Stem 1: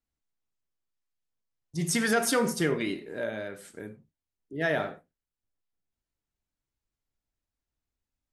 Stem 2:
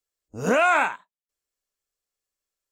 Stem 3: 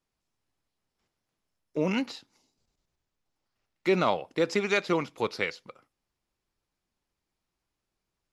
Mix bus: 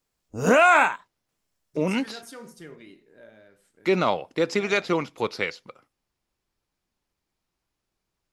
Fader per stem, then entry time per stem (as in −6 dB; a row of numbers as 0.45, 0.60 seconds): −17.0, +3.0, +2.5 decibels; 0.00, 0.00, 0.00 seconds